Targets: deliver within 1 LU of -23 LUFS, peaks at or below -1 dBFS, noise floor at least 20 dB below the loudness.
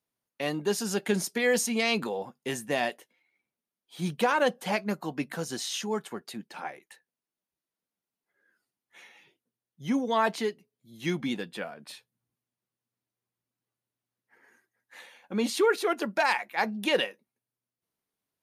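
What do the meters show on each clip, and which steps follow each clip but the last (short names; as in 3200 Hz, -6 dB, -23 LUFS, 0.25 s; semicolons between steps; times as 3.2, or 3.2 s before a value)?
loudness -29.5 LUFS; peak -12.5 dBFS; loudness target -23.0 LUFS
-> gain +6.5 dB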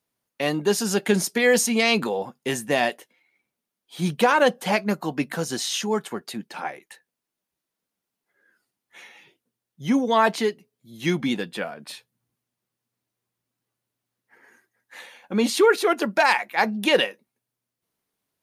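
loudness -23.0 LUFS; peak -6.0 dBFS; noise floor -85 dBFS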